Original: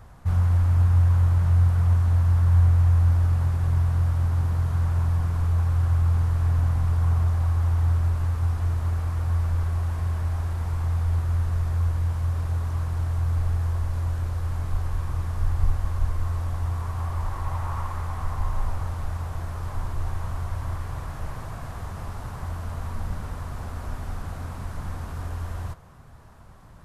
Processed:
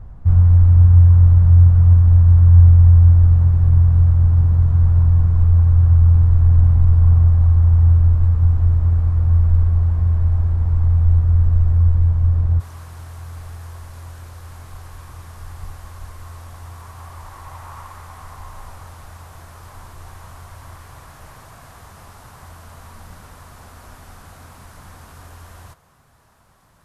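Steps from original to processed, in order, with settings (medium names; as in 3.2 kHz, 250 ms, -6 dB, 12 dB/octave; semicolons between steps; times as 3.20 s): tilt EQ -3.5 dB/octave, from 12.59 s +2 dB/octave; trim -3 dB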